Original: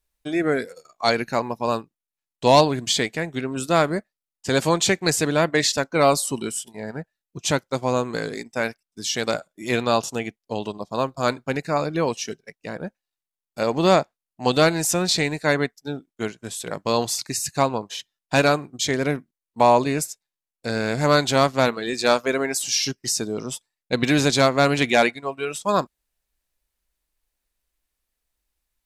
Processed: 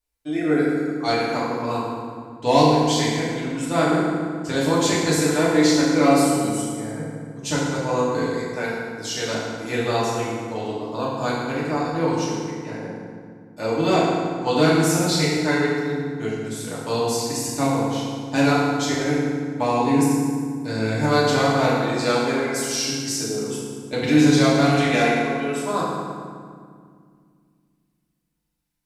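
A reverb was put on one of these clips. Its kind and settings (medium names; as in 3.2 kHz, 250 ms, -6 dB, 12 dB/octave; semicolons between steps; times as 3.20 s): FDN reverb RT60 2 s, low-frequency decay 1.55×, high-frequency decay 0.65×, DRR -8 dB; trim -9 dB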